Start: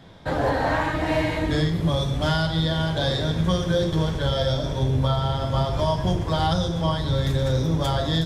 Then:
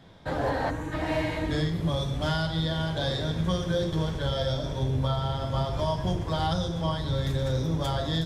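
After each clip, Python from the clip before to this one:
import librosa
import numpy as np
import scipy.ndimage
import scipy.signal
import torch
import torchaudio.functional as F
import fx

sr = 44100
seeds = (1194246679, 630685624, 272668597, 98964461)

y = fx.spec_box(x, sr, start_s=0.7, length_s=0.22, low_hz=530.0, high_hz=5700.0, gain_db=-12)
y = F.gain(torch.from_numpy(y), -5.0).numpy()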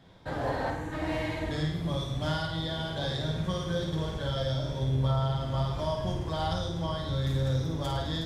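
y = fx.room_flutter(x, sr, wall_m=9.0, rt60_s=0.59)
y = F.gain(torch.from_numpy(y), -4.5).numpy()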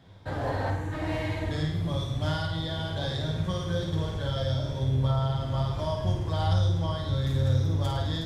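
y = fx.peak_eq(x, sr, hz=98.0, db=15.0, octaves=0.23)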